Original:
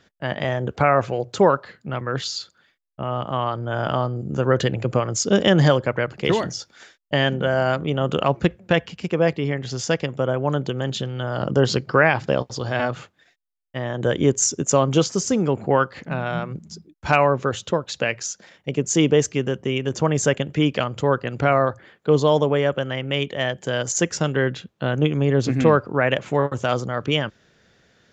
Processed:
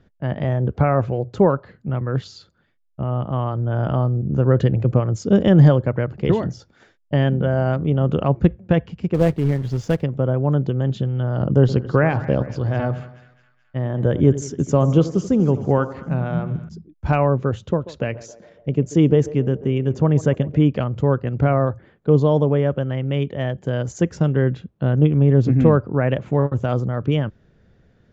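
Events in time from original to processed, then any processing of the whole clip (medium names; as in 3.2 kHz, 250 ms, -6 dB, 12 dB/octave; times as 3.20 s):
9.14–10.03 s: companded quantiser 4-bit
11.60–16.69 s: two-band feedback delay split 1.4 kHz, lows 86 ms, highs 213 ms, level -14 dB
17.56–20.57 s: band-passed feedback delay 138 ms, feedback 64%, band-pass 560 Hz, level -14.5 dB
whole clip: tilt EQ -4 dB/octave; trim -4.5 dB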